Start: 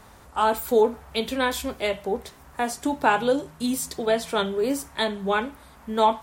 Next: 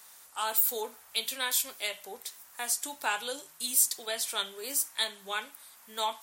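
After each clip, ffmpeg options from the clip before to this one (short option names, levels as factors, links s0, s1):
-af "aderivative,volume=1.88"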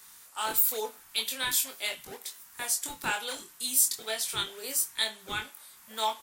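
-filter_complex "[0:a]acrossover=split=730[s0][s1];[s0]acrusher=samples=33:mix=1:aa=0.000001:lfo=1:lforange=52.8:lforate=2.1[s2];[s2][s1]amix=inputs=2:normalize=0,asplit=2[s3][s4];[s4]adelay=23,volume=0.562[s5];[s3][s5]amix=inputs=2:normalize=0"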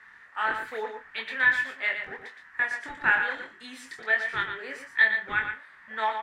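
-filter_complex "[0:a]lowpass=f=1800:t=q:w=7.9,asplit=2[s0][s1];[s1]aecho=0:1:116:0.422[s2];[s0][s2]amix=inputs=2:normalize=0"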